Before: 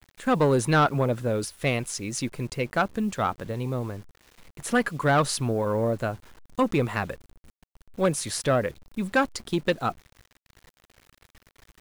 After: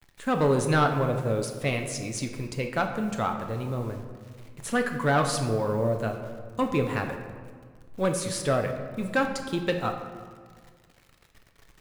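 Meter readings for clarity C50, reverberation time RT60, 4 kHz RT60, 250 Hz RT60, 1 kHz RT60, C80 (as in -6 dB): 7.0 dB, 1.8 s, 1.0 s, 2.1 s, 1.7 s, 8.5 dB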